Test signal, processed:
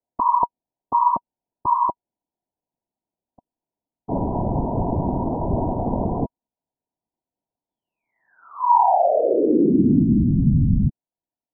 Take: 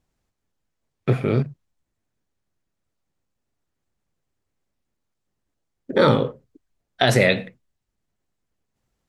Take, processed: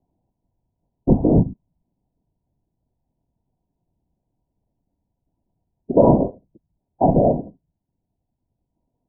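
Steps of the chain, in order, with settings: whisperiser; rippled Chebyshev low-pass 990 Hz, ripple 6 dB; vocal rider within 4 dB 0.5 s; gain +9 dB

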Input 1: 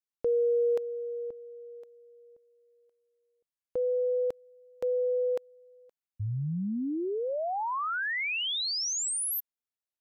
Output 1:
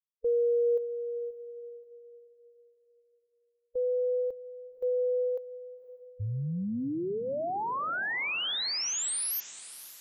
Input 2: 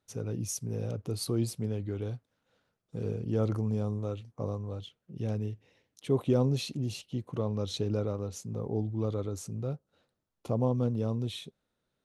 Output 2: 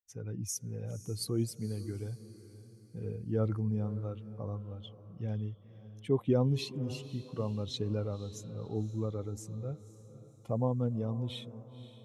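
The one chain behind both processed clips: per-bin expansion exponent 1.5; diffused feedback echo 0.527 s, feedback 42%, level -15 dB

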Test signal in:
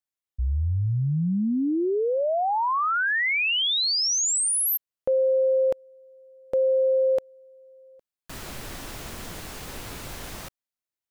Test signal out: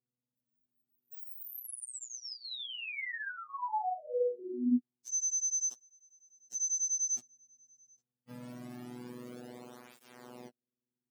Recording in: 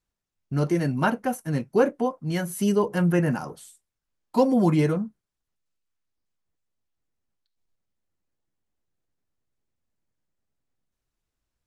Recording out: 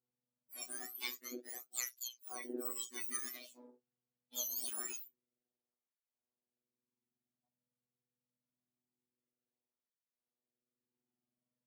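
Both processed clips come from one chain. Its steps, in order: spectrum mirrored in octaves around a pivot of 1800 Hz; robotiser 123 Hz; tape flanging out of phase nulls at 0.25 Hz, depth 3.3 ms; gain -8 dB

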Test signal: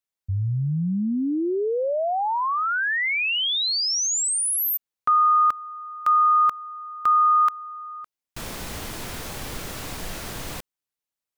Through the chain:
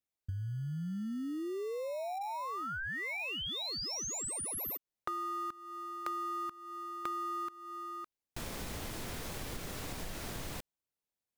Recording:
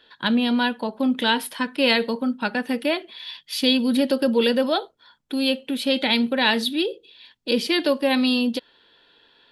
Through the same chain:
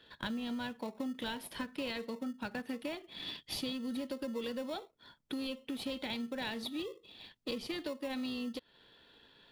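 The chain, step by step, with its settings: in parallel at -9.5 dB: sample-and-hold 28×; on the sum: compressor 6:1, threshold -31 dBFS; gain -6 dB

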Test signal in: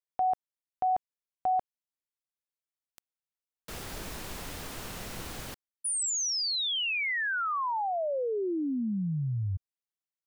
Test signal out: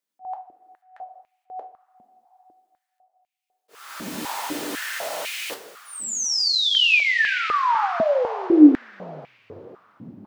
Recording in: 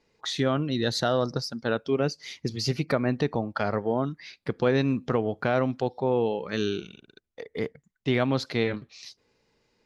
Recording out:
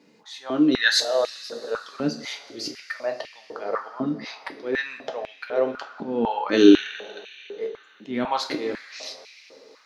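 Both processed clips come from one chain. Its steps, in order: auto swell 0.578 s; two-slope reverb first 0.3 s, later 3.9 s, from -18 dB, DRR 3 dB; stepped high-pass 4 Hz 230–2400 Hz; gain +7 dB

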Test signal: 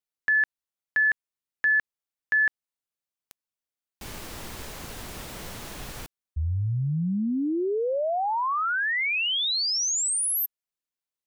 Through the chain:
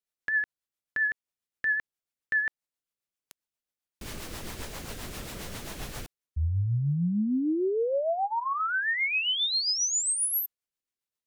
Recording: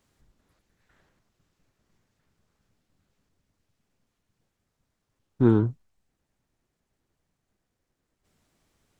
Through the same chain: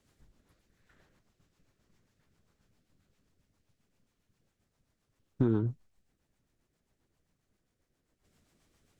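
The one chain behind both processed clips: compressor 6:1, threshold -24 dBFS; rotary speaker horn 7.5 Hz; gain +2 dB

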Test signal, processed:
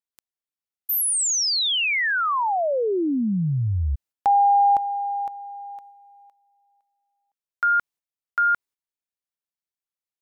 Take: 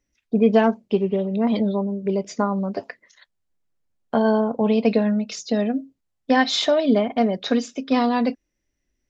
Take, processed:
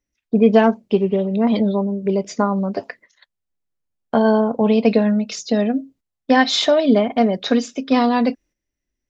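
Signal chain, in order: gate -50 dBFS, range -9 dB; gain +3.5 dB

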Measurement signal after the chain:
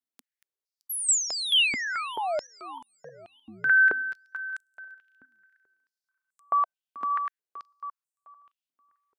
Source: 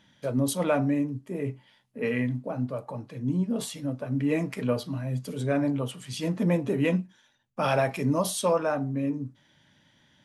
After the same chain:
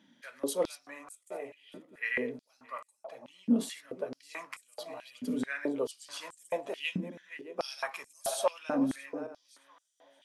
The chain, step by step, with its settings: regenerating reverse delay 0.309 s, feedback 46%, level -14 dB; stepped high-pass 4.6 Hz 250–7900 Hz; gain -6 dB

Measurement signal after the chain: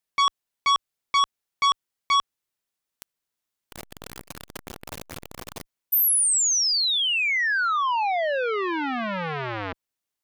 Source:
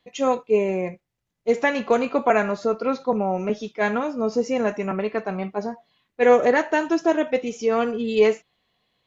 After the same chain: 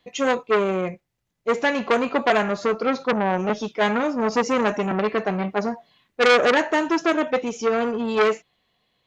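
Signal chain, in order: vocal rider within 4 dB 2 s; core saturation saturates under 2200 Hz; gain +3.5 dB

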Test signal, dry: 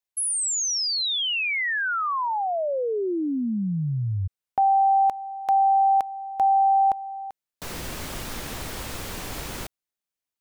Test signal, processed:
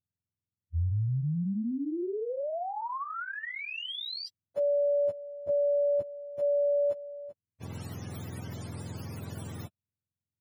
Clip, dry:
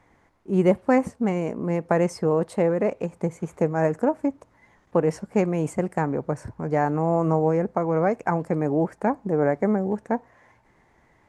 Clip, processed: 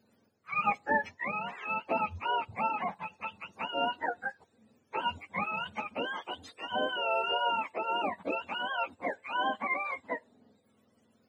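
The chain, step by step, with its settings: spectrum mirrored in octaves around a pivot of 670 Hz; gain -7 dB

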